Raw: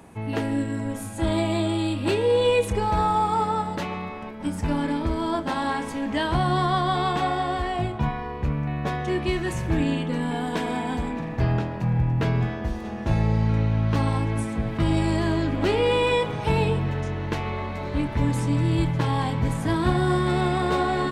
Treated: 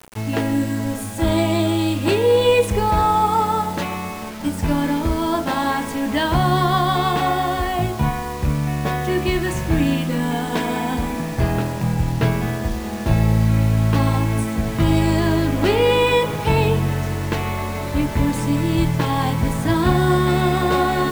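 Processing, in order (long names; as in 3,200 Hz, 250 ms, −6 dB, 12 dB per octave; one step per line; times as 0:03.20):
hum removal 62.11 Hz, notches 28
bit reduction 7 bits
level +5.5 dB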